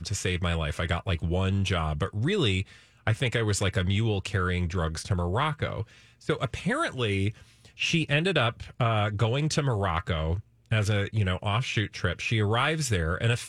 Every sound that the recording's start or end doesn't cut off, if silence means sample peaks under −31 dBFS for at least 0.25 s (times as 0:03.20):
0:03.07–0:05.83
0:06.29–0:07.30
0:07.80–0:10.40